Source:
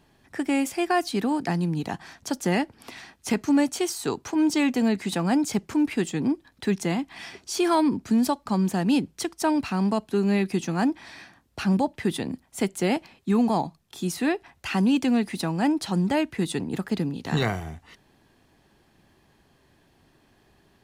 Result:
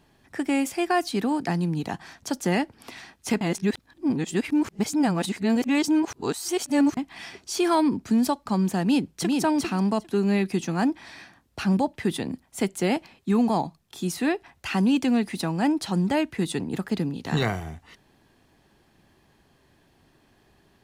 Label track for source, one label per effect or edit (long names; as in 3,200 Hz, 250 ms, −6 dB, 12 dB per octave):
3.410000	6.970000	reverse
8.820000	9.390000	delay throw 400 ms, feedback 10%, level −3 dB